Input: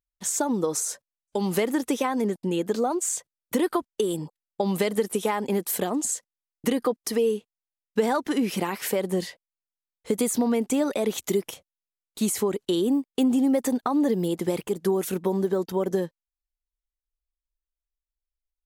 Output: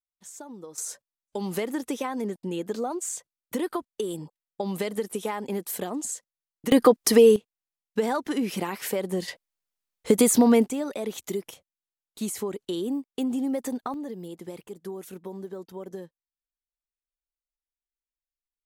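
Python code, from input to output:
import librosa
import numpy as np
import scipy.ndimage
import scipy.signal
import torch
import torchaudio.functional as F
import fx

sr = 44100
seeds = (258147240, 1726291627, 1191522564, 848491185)

y = fx.gain(x, sr, db=fx.steps((0.0, -17.0), (0.78, -5.0), (6.72, 8.0), (7.36, -2.5), (9.28, 5.5), (10.68, -6.0), (13.94, -13.0)))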